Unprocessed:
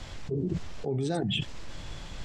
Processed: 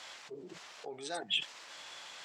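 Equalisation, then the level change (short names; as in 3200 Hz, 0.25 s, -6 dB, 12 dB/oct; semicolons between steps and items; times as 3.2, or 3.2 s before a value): HPF 840 Hz 12 dB/oct; 0.0 dB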